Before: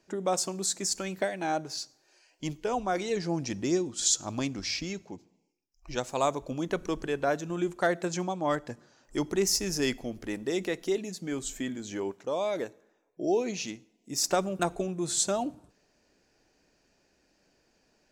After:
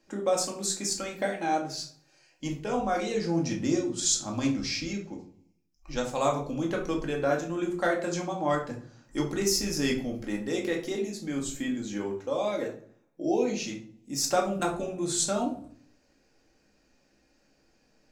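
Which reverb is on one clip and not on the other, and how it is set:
rectangular room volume 390 cubic metres, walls furnished, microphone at 2.2 metres
level −2.5 dB

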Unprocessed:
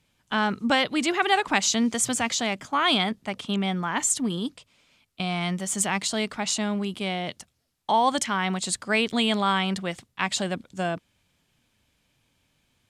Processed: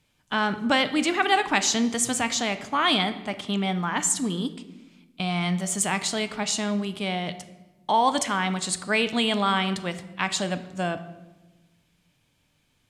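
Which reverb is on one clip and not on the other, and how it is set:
rectangular room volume 590 cubic metres, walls mixed, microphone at 0.44 metres

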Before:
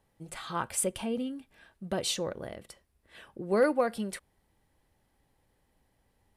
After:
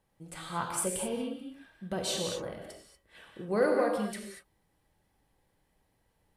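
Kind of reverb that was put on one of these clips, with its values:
reverb whose tail is shaped and stops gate 260 ms flat, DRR 0.5 dB
level −3.5 dB

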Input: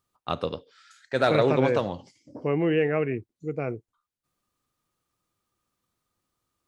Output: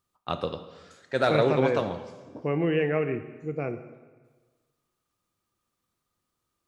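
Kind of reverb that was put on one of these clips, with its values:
dense smooth reverb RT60 1.4 s, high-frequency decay 0.9×, DRR 9 dB
level −1.5 dB

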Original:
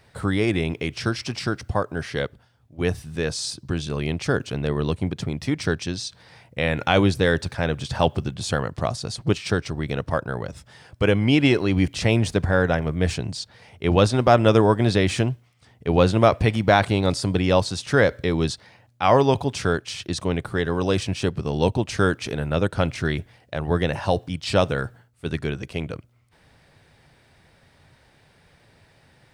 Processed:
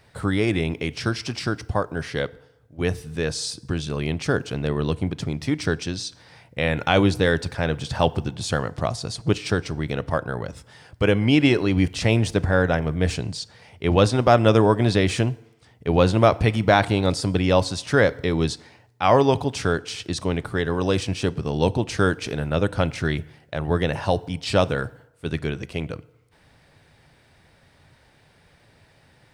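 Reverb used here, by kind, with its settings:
feedback delay network reverb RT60 0.92 s, low-frequency decay 0.8×, high-frequency decay 0.7×, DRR 18.5 dB

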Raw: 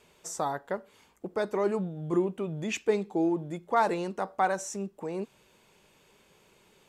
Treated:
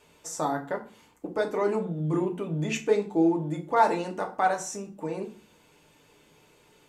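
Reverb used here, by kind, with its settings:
feedback delay network reverb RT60 0.38 s, low-frequency decay 1.5×, high-frequency decay 0.75×, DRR 1.5 dB

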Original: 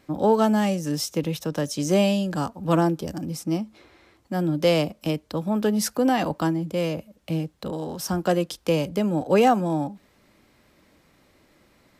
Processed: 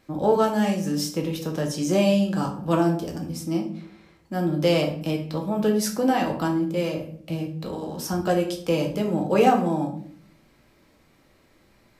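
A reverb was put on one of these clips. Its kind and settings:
rectangular room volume 67 cubic metres, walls mixed, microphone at 0.64 metres
level −3 dB

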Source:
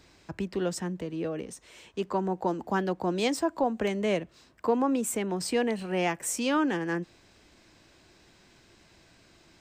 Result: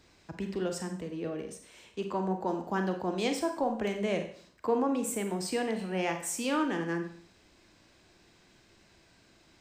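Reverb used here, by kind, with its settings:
four-comb reverb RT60 0.52 s, combs from 32 ms, DRR 5.5 dB
level −4 dB

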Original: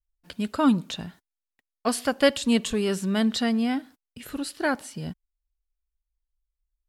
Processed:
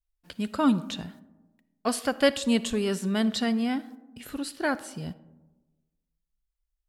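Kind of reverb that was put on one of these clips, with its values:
comb and all-pass reverb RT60 1.2 s, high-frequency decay 0.3×, pre-delay 15 ms, DRR 16.5 dB
level −2 dB

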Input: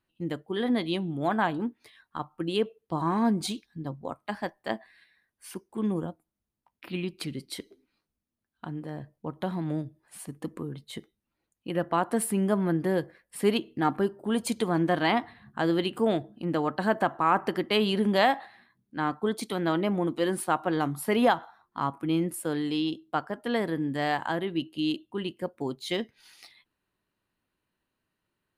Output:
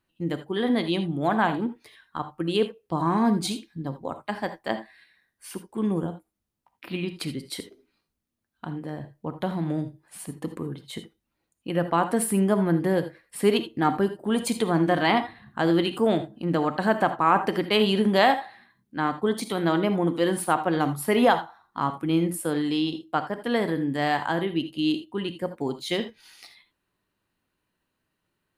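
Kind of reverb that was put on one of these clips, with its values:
reverb whose tail is shaped and stops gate 100 ms rising, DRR 10 dB
level +3 dB

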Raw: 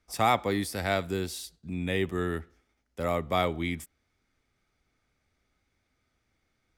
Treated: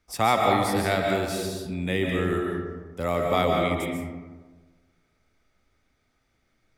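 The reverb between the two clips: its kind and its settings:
comb and all-pass reverb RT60 1.4 s, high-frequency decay 0.4×, pre-delay 105 ms, DRR 0 dB
level +2 dB

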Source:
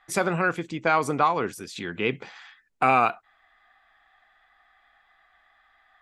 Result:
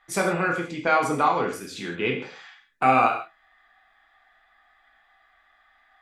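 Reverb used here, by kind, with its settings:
reverb whose tail is shaped and stops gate 190 ms falling, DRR 0 dB
level −2 dB

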